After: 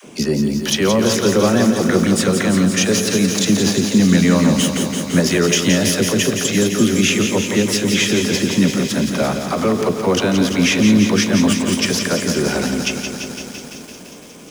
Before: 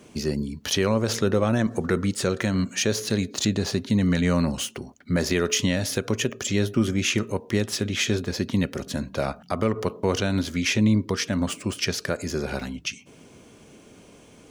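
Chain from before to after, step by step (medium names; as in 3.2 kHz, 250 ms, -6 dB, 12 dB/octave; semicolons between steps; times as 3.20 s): resonant low shelf 130 Hz -7 dB, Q 1.5; in parallel at +3 dB: peak limiter -19.5 dBFS, peak gain reduction 10 dB; on the sum: band-stop 4.3 kHz, Q 13; phase dispersion lows, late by 46 ms, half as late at 420 Hz; on a send: feedback echo behind a high-pass 179 ms, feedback 80%, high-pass 4.7 kHz, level -8 dB; on the sum: bit-crushed delay 169 ms, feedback 80%, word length 7-bit, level -7.5 dB; trim +2 dB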